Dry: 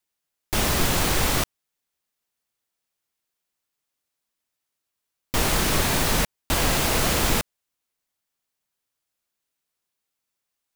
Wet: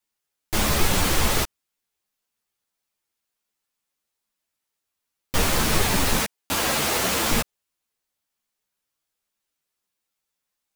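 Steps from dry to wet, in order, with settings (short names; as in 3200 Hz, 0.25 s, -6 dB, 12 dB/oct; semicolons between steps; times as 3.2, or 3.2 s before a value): 6.18–7.32 HPF 250 Hz 6 dB/oct; ensemble effect; gain +3.5 dB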